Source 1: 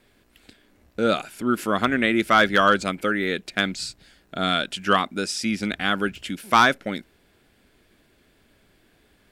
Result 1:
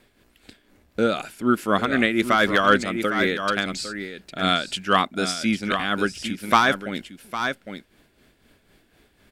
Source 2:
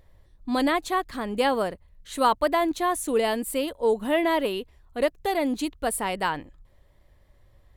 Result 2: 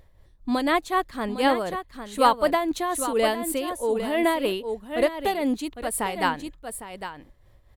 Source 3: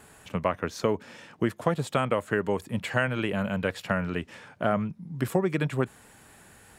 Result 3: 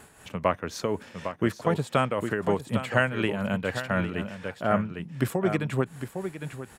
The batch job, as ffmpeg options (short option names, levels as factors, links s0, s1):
-af "aecho=1:1:806:0.355,tremolo=f=4:d=0.55,volume=1.41"